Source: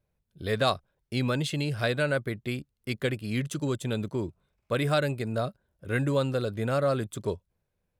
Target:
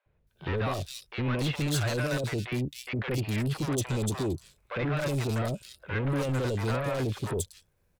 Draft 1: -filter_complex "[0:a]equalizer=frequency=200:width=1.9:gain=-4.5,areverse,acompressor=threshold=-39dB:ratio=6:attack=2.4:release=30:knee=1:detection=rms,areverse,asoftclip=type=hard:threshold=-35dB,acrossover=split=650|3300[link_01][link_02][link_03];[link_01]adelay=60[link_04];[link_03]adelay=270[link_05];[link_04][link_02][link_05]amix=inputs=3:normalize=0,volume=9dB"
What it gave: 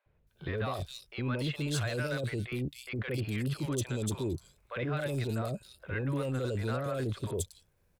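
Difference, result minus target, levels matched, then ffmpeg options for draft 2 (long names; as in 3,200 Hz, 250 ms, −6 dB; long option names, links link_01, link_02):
downward compressor: peak gain reduction +9 dB
-filter_complex "[0:a]equalizer=frequency=200:width=1.9:gain=-4.5,areverse,acompressor=threshold=-28dB:ratio=6:attack=2.4:release=30:knee=1:detection=rms,areverse,asoftclip=type=hard:threshold=-35dB,acrossover=split=650|3300[link_01][link_02][link_03];[link_01]adelay=60[link_04];[link_03]adelay=270[link_05];[link_04][link_02][link_05]amix=inputs=3:normalize=0,volume=9dB"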